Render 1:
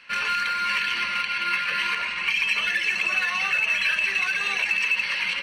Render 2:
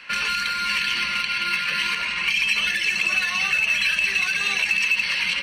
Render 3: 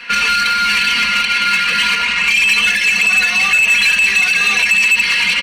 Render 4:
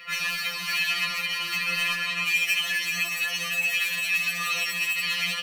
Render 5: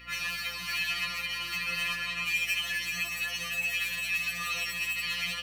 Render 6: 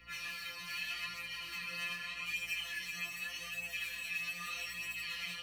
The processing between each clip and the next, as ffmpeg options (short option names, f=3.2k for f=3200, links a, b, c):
-filter_complex "[0:a]acrossover=split=260|3000[a][b][c];[b]acompressor=threshold=-35dB:ratio=4[d];[a][d][c]amix=inputs=3:normalize=0,volume=7dB"
-af "aecho=1:1:4.2:0.93,asoftclip=type=tanh:threshold=-14.5dB,volume=7.5dB"
-af "areverse,acompressor=mode=upward:threshold=-25dB:ratio=2.5,areverse,aexciter=amount=1.8:drive=9.6:freq=11k,afftfilt=real='re*2.83*eq(mod(b,8),0)':imag='im*2.83*eq(mod(b,8),0)':win_size=2048:overlap=0.75,volume=-8.5dB"
-af "aeval=exprs='val(0)+0.00355*(sin(2*PI*60*n/s)+sin(2*PI*2*60*n/s)/2+sin(2*PI*3*60*n/s)/3+sin(2*PI*4*60*n/s)/4+sin(2*PI*5*60*n/s)/5)':c=same,volume=-5.5dB"
-filter_complex "[0:a]acrossover=split=100|920[a][b][c];[a]aeval=exprs='(mod(562*val(0)+1,2)-1)/562':c=same[d];[d][b][c]amix=inputs=3:normalize=0,flanger=delay=17.5:depth=5.7:speed=0.82,volume=-6dB"